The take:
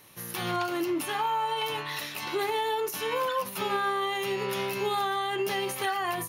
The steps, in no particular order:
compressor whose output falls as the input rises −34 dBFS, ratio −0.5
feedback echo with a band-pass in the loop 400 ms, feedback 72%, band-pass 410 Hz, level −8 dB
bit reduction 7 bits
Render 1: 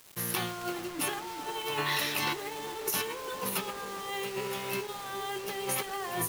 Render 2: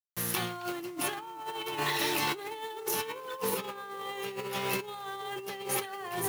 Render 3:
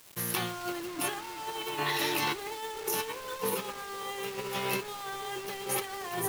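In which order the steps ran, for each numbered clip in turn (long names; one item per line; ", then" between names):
compressor whose output falls as the input rises, then feedback echo with a band-pass in the loop, then bit reduction
feedback echo with a band-pass in the loop, then bit reduction, then compressor whose output falls as the input rises
feedback echo with a band-pass in the loop, then compressor whose output falls as the input rises, then bit reduction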